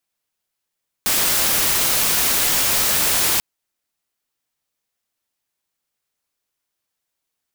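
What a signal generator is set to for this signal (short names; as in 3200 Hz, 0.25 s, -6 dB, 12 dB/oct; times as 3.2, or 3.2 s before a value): noise white, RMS -18 dBFS 2.34 s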